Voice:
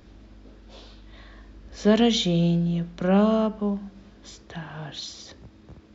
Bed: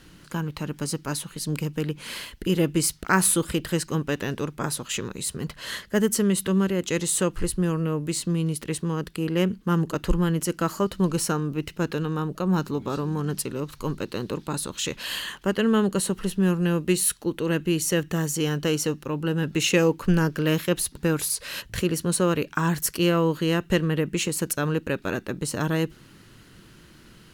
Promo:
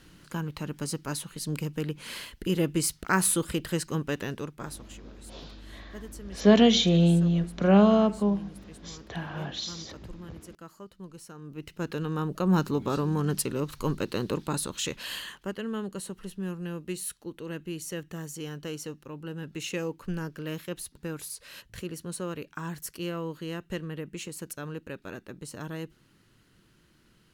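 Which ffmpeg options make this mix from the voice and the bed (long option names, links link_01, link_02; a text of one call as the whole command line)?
ffmpeg -i stem1.wav -i stem2.wav -filter_complex "[0:a]adelay=4600,volume=1dB[link_01];[1:a]volume=17.5dB,afade=type=out:start_time=4.17:duration=0.78:silence=0.133352,afade=type=in:start_time=11.34:duration=1.21:silence=0.0841395,afade=type=out:start_time=14.35:duration=1.26:silence=0.237137[link_02];[link_01][link_02]amix=inputs=2:normalize=0" out.wav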